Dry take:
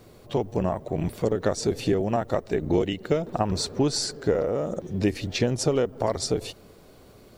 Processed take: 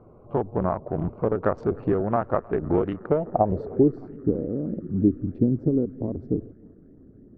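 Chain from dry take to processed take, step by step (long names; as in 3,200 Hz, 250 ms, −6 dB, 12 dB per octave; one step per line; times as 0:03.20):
adaptive Wiener filter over 25 samples
low-pass filter sweep 1,300 Hz → 280 Hz, 0:02.93–0:04.09
feedback echo with a band-pass in the loop 309 ms, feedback 83%, band-pass 1,700 Hz, level −22.5 dB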